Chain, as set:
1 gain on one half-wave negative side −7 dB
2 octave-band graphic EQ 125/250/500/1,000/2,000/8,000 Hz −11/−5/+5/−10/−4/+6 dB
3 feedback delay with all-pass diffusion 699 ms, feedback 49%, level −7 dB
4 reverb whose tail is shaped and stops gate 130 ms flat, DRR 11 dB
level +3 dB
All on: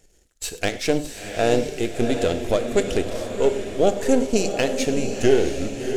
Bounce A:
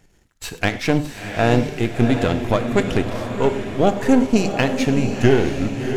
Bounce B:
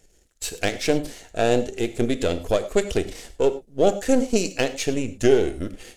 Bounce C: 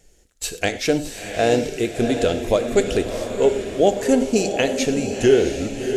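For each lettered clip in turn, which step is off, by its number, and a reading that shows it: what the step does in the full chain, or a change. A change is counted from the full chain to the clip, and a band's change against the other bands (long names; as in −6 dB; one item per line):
2, change in integrated loudness +3.0 LU
3, echo-to-direct ratio −4.5 dB to −11.0 dB
1, distortion level −9 dB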